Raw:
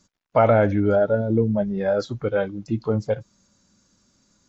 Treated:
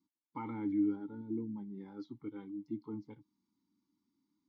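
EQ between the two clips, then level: vowel filter u; high shelf 5100 Hz +5.5 dB; fixed phaser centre 2500 Hz, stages 6; -2.5 dB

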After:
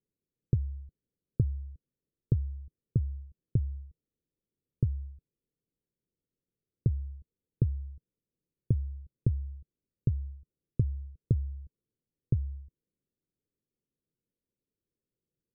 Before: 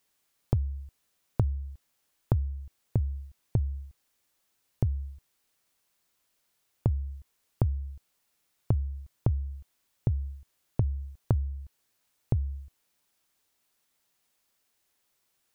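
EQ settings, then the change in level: steep low-pass 500 Hz 48 dB/oct; bell 150 Hz +5.5 dB; -3.5 dB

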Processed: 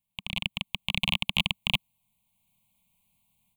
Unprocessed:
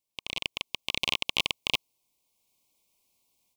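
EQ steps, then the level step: resonant low shelf 250 Hz +8 dB, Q 3; fixed phaser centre 1500 Hz, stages 6; +2.5 dB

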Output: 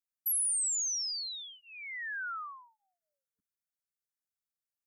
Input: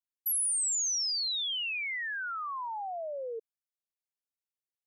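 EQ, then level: inverse Chebyshev band-stop 360–870 Hz, stop band 40 dB; fixed phaser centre 1200 Hz, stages 4; 0.0 dB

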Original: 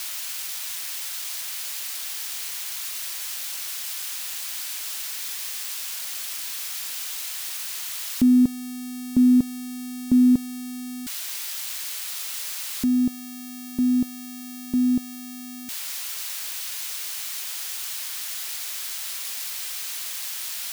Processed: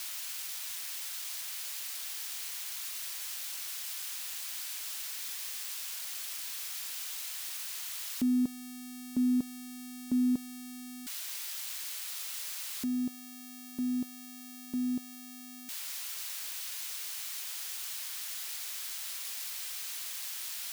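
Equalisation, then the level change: low shelf 91 Hz -11.5 dB; low shelf 260 Hz -5 dB; -7.5 dB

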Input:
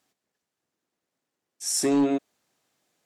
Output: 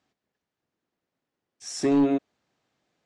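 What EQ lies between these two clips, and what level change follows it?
air absorption 120 m; low shelf 140 Hz +7 dB; 0.0 dB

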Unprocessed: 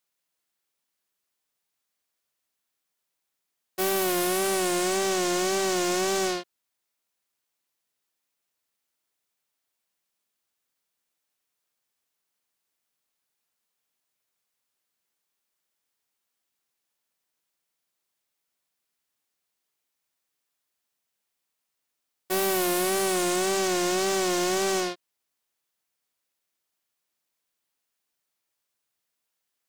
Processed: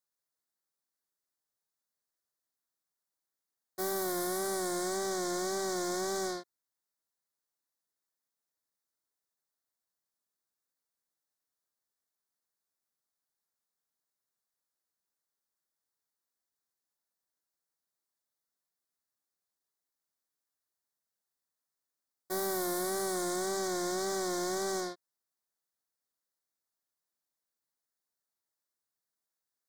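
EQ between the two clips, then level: Butterworth band-stop 2700 Hz, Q 1.5; -8.0 dB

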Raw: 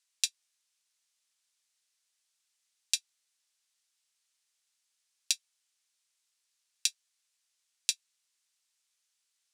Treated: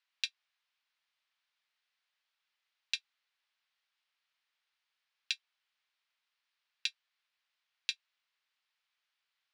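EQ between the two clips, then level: HPF 790 Hz; air absorption 350 m; +7.0 dB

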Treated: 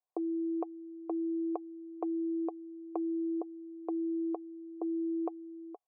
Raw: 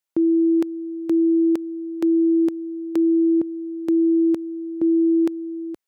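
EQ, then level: vocal tract filter a; resonant high-pass 430 Hz, resonance Q 4.9; notch 820 Hz, Q 24; +6.5 dB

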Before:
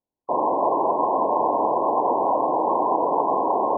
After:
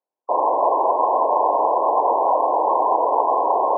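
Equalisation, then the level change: Butterworth band-pass 840 Hz, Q 0.74; +3.5 dB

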